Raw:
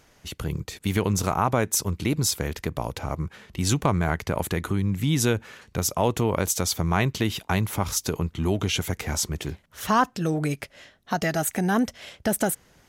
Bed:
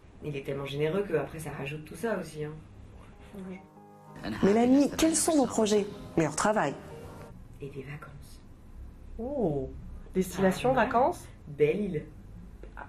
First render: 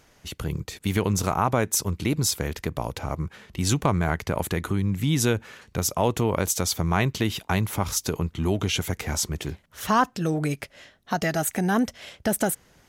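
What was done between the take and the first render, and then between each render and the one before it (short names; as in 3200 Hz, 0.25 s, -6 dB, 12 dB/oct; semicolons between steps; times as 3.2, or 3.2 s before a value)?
6.83–8.75 short-mantissa float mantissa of 8-bit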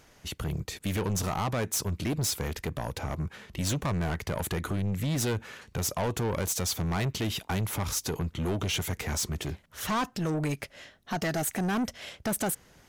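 soft clip -25 dBFS, distortion -8 dB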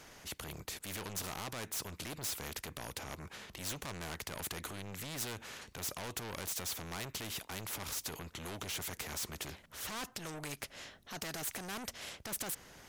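transient shaper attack -6 dB, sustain -1 dB; spectral compressor 2:1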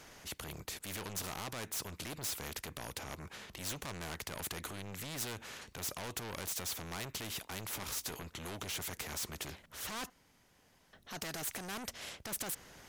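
7.72–8.24 doubler 16 ms -10 dB; 10.1–10.93 room tone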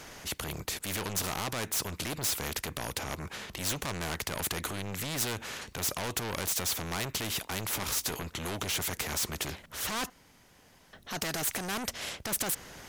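gain +8 dB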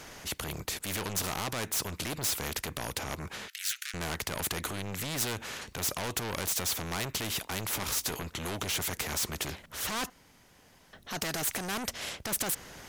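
3.48–3.94 steep high-pass 1400 Hz 72 dB/oct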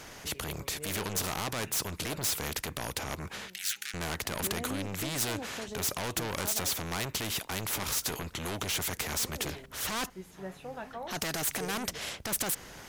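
add bed -16.5 dB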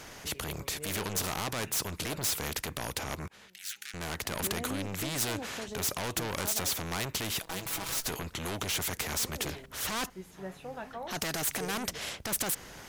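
3.28–4.33 fade in, from -19 dB; 7.42–8.07 minimum comb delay 6.1 ms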